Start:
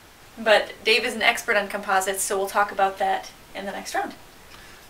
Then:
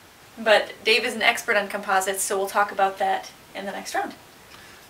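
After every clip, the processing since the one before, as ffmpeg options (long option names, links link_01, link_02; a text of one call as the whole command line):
ffmpeg -i in.wav -af "highpass=75" out.wav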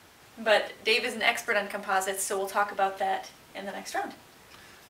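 ffmpeg -i in.wav -af "aecho=1:1:94:0.119,volume=-5.5dB" out.wav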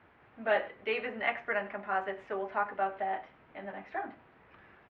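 ffmpeg -i in.wav -af "lowpass=frequency=2300:width=0.5412,lowpass=frequency=2300:width=1.3066,volume=-5dB" out.wav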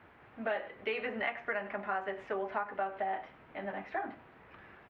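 ffmpeg -i in.wav -af "acompressor=threshold=-34dB:ratio=6,volume=3dB" out.wav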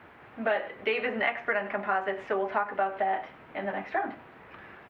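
ffmpeg -i in.wav -af "lowshelf=frequency=78:gain=-8,volume=7dB" out.wav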